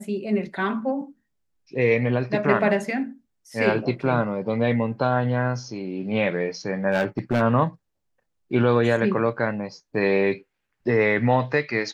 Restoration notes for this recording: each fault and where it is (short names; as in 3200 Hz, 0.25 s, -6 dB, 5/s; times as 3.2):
6.91–7.42 clipped -16.5 dBFS